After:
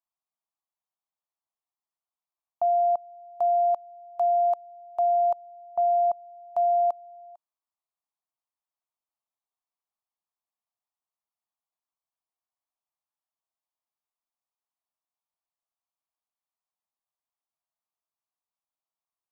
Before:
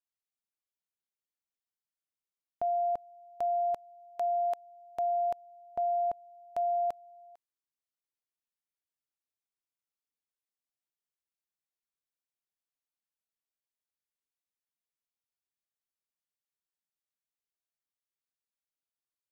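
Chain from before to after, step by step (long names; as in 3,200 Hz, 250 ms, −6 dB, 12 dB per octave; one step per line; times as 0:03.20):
flat-topped bell 880 Hz +15 dB 1.2 octaves
level −7.5 dB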